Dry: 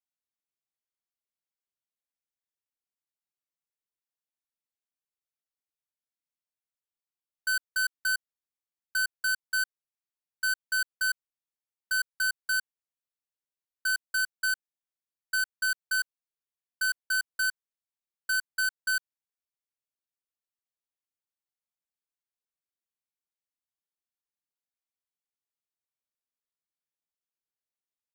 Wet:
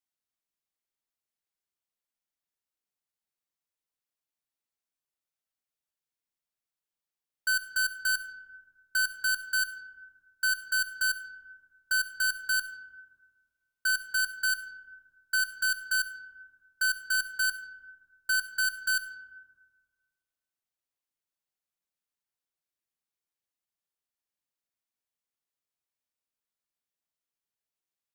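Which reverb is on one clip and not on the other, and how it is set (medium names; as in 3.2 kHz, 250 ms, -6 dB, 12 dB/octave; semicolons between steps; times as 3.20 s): algorithmic reverb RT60 1.7 s, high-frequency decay 0.35×, pre-delay 35 ms, DRR 10.5 dB; trim +1 dB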